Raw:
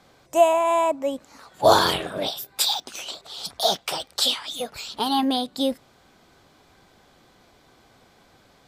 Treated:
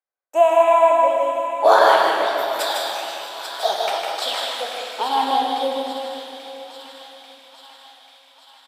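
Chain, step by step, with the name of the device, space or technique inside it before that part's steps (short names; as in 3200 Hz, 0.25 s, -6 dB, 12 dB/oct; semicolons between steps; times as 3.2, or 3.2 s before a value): gate -43 dBFS, range -42 dB; HPF 110 Hz; stadium PA (HPF 200 Hz 12 dB/oct; bell 1800 Hz +5 dB 0.54 oct; loudspeakers at several distances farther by 53 m -4 dB, 69 m -11 dB; reverb RT60 3.5 s, pre-delay 23 ms, DRR 2 dB); three-band isolator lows -23 dB, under 410 Hz, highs -12 dB, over 2300 Hz; thin delay 0.84 s, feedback 63%, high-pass 1600 Hz, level -11 dB; gain +3 dB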